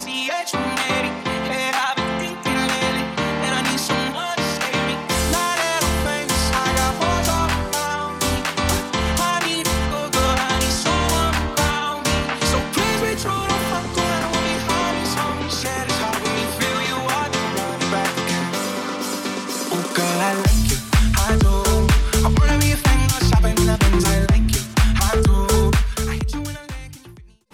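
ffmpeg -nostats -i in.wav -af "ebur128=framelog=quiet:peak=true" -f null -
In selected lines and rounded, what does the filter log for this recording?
Integrated loudness:
  I:         -19.8 LUFS
  Threshold: -29.9 LUFS
Loudness range:
  LRA:         4.0 LU
  Threshold: -39.7 LUFS
  LRA low:   -21.3 LUFS
  LRA high:  -17.3 LUFS
True peak:
  Peak:       -6.0 dBFS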